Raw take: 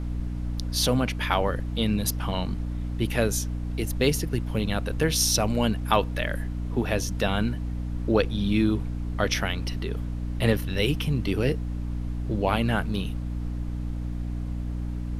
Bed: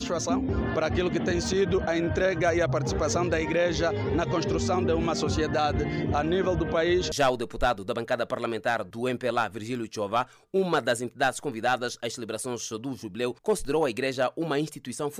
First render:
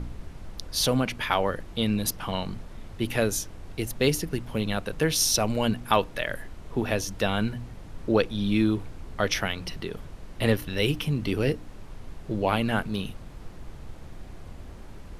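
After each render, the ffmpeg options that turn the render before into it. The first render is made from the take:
-af "bandreject=f=60:t=h:w=4,bandreject=f=120:t=h:w=4,bandreject=f=180:t=h:w=4,bandreject=f=240:t=h:w=4,bandreject=f=300:t=h:w=4"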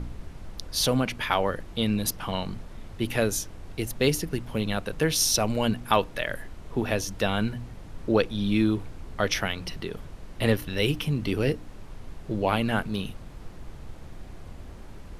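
-af anull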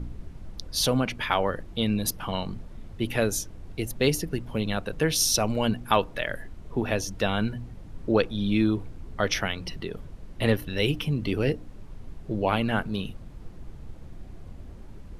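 -af "afftdn=nr=7:nf=-44"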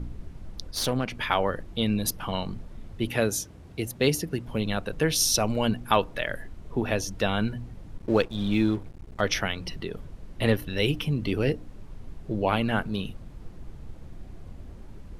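-filter_complex "[0:a]asettb=1/sr,asplit=3[s0][s1][s2];[s0]atrim=end=0.714[s3];[s1]atrim=start=0.71:end=1.12,asetpts=PTS-STARTPTS,afade=t=in:d=0.004:c=qsin,afade=t=out:st=0.406:d=0.004:c=qsin,aeval=exprs='(tanh(7.08*val(0)+0.7)-tanh(0.7))/7.08':c=same[s4];[s2]atrim=start=1.116[s5];[s3][s4]acrossfade=d=0.004:c1=hsin:c2=qsin[s6];[s6][s5]acrossfade=d=0.004:c1=qsin:c2=hsin,asettb=1/sr,asplit=3[s7][s8][s9];[s7]atrim=end=3.084[s10];[s8]atrim=start=3.08:end=4.48,asetpts=PTS-STARTPTS,afade=t=in:d=0.004:c=qsin,afade=t=out:st=1.396:d=0.004:c=qsin,highpass=66[s11];[s9]atrim=start=4.476[s12];[s10][s11]acrossfade=d=0.004:c1=hsin:c2=qsin[s13];[s13][s12]acrossfade=d=0.004:c1=qsin:c2=hsin,asettb=1/sr,asplit=3[s14][s15][s16];[s14]atrim=end=7.984[s17];[s15]atrim=start=7.98:end=9.21,asetpts=PTS-STARTPTS,afade=t=in:d=0.004:c=qsin,afade=t=out:st=1.226:d=0.004:c=qsin,aeval=exprs='sgn(val(0))*max(abs(val(0))-0.0075,0)':c=same[s18];[s16]atrim=start=9.206[s19];[s17][s18]acrossfade=d=0.004:c1=hsin:c2=qsin[s20];[s20][s19]acrossfade=d=0.004:c1=qsin:c2=hsin"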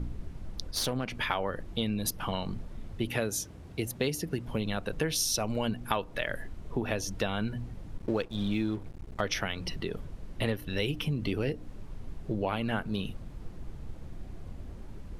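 -af "acompressor=threshold=0.0447:ratio=4"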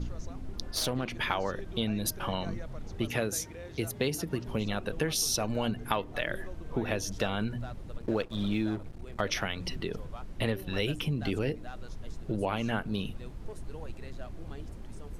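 -filter_complex "[1:a]volume=0.0841[s0];[0:a][s0]amix=inputs=2:normalize=0"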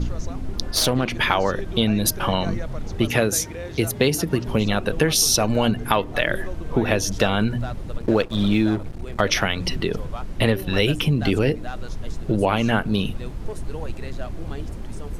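-af "volume=3.55,alimiter=limit=0.794:level=0:latency=1"

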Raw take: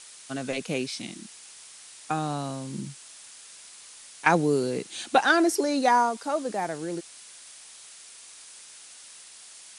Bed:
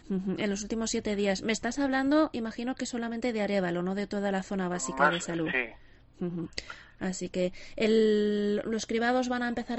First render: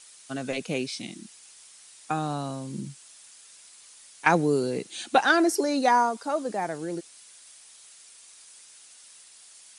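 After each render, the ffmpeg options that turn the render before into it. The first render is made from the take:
-af "afftdn=nr=6:nf=-48"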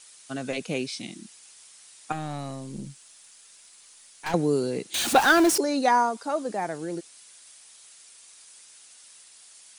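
-filter_complex "[0:a]asettb=1/sr,asplit=3[s0][s1][s2];[s0]atrim=end=2.124[s3];[s1]atrim=start=2.12:end=4.34,asetpts=PTS-STARTPTS,afade=t=in:d=0.004:c=qsin,afade=t=out:st=2.216:d=0.004:c=qsin,aeval=exprs='(tanh(22.4*val(0)+0.4)-tanh(0.4))/22.4':c=same[s4];[s2]atrim=start=4.336[s5];[s3][s4]acrossfade=d=0.004:c1=hsin:c2=qsin[s6];[s6][s5]acrossfade=d=0.004:c1=qsin:c2=hsin,asettb=1/sr,asplit=3[s7][s8][s9];[s7]atrim=end=4.944[s10];[s8]atrim=start=4.94:end=5.58,asetpts=PTS-STARTPTS,afade=t=in:d=0.004:c=qsin,afade=t=out:st=0.636:d=0.004:c=qsin,aeval=exprs='val(0)+0.5*0.0708*sgn(val(0))':c=same[s11];[s9]atrim=start=5.576[s12];[s10][s11]acrossfade=d=0.004:c1=hsin:c2=qsin[s13];[s13][s12]acrossfade=d=0.004:c1=qsin:c2=hsin"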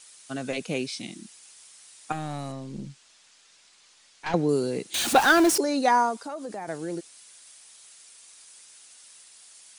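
-filter_complex "[0:a]asettb=1/sr,asplit=3[s0][s1][s2];[s0]atrim=end=2.524[s3];[s1]atrim=start=2.52:end=4.49,asetpts=PTS-STARTPTS,afade=t=in:d=0.004:c=qsin,afade=t=out:st=1.966:d=0.004:c=qsin,lowpass=5300[s4];[s2]atrim=start=4.486[s5];[s3][s4]acrossfade=d=0.004:c1=hsin:c2=qsin[s6];[s6][s5]acrossfade=d=0.004:c1=qsin:c2=hsin,asettb=1/sr,asplit=3[s7][s8][s9];[s7]atrim=end=6.164[s10];[s8]atrim=start=6.16:end=6.68,asetpts=PTS-STARTPTS,afade=t=in:d=0.004:c=qsin,afade=t=out:st=0.516:d=0.004:c=qsin,acompressor=threshold=0.0251:ratio=4:attack=3.2:release=140:knee=1:detection=peak[s11];[s9]atrim=start=6.676[s12];[s10][s11]acrossfade=d=0.004:c1=hsin:c2=qsin[s13];[s13][s12]acrossfade=d=0.004:c1=qsin:c2=hsin"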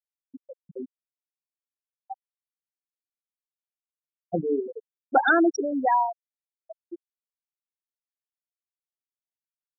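-af "bandreject=f=60:t=h:w=6,bandreject=f=120:t=h:w=6,bandreject=f=180:t=h:w=6,bandreject=f=240:t=h:w=6,bandreject=f=300:t=h:w=6,bandreject=f=360:t=h:w=6,bandreject=f=420:t=h:w=6,bandreject=f=480:t=h:w=6,bandreject=f=540:t=h:w=6,bandreject=f=600:t=h:w=6,afftfilt=real='re*gte(hypot(re,im),0.316)':imag='im*gte(hypot(re,im),0.316)':win_size=1024:overlap=0.75"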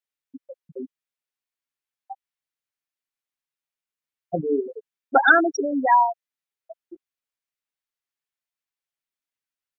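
-af "equalizer=f=2100:w=0.66:g=6.5,aecho=1:1:7.3:0.43"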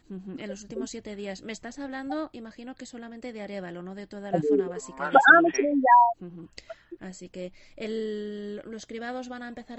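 -filter_complex "[1:a]volume=0.398[s0];[0:a][s0]amix=inputs=2:normalize=0"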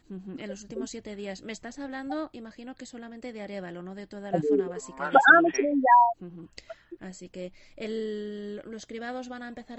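-af "volume=0.891"

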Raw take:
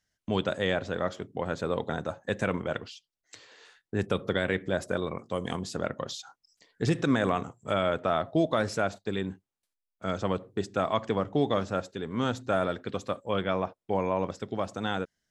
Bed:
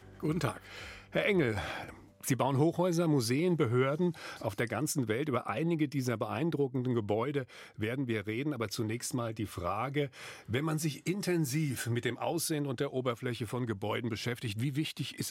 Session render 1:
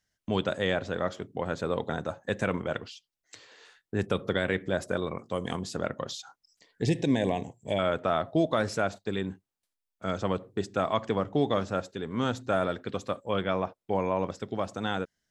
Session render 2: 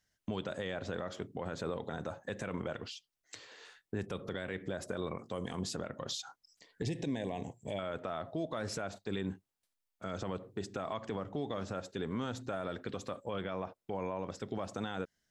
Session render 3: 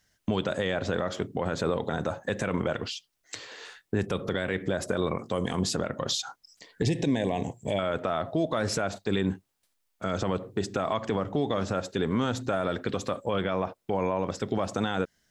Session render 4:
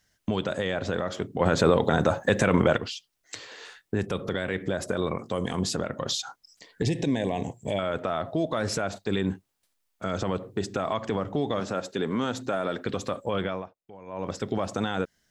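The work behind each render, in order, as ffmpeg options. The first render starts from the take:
-filter_complex "[0:a]asettb=1/sr,asplit=3[s0][s1][s2];[s0]atrim=end=6.824[s3];[s1]atrim=start=6.82:end=7.79,asetpts=PTS-STARTPTS,afade=t=in:d=0.004:c=qsin,afade=t=out:st=0.966:d=0.004:c=qsin,asuperstop=centerf=1300:order=4:qfactor=1.4[s4];[s2]atrim=start=7.786[s5];[s3][s4]acrossfade=d=0.004:c1=hsin:c2=qsin[s6];[s6][s5]acrossfade=d=0.004:c1=qsin:c2=hsin"
-af "acompressor=threshold=0.0355:ratio=6,alimiter=level_in=1.33:limit=0.0631:level=0:latency=1:release=42,volume=0.75"
-af "volume=3.16"
-filter_complex "[0:a]asettb=1/sr,asplit=3[s0][s1][s2];[s0]atrim=end=11.604[s3];[s1]atrim=start=11.6:end=12.86,asetpts=PTS-STARTPTS,afade=t=in:d=0.004:c=qsin,afade=t=out:st=1.256:d=0.004:c=qsin,highpass=160[s4];[s2]atrim=start=12.856[s5];[s3][s4]acrossfade=d=0.004:c1=hsin:c2=qsin[s6];[s6][s5]acrossfade=d=0.004:c1=qsin:c2=hsin,asplit=5[s7][s8][s9][s10][s11];[s7]atrim=end=1.402[s12];[s8]atrim=start=1.398:end=2.782,asetpts=PTS-STARTPTS,volume=2.37[s13];[s9]atrim=start=2.778:end=13.7,asetpts=PTS-STARTPTS,afade=t=out:st=10.672:d=0.25:silence=0.11885[s14];[s10]atrim=start=13.7:end=14.06,asetpts=PTS-STARTPTS,volume=0.119[s15];[s11]atrim=start=14.06,asetpts=PTS-STARTPTS,afade=t=in:d=0.25:silence=0.11885[s16];[s12][s13]acrossfade=d=0.004:c1=hsin:c2=hsin[s17];[s14][s15][s16]concat=n=3:v=0:a=1[s18];[s17][s18]acrossfade=d=0.004:c1=hsin:c2=hsin"

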